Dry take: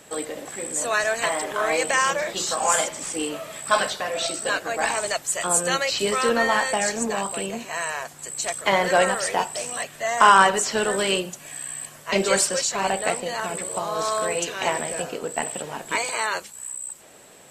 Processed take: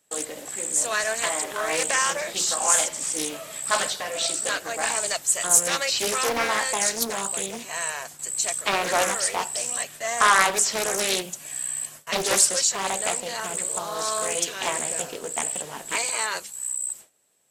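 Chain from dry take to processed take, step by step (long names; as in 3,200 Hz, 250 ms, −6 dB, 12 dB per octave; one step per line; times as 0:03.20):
noise gate with hold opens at −32 dBFS
high-shelf EQ 4,200 Hz +12 dB
highs frequency-modulated by the lows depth 0.66 ms
level −4.5 dB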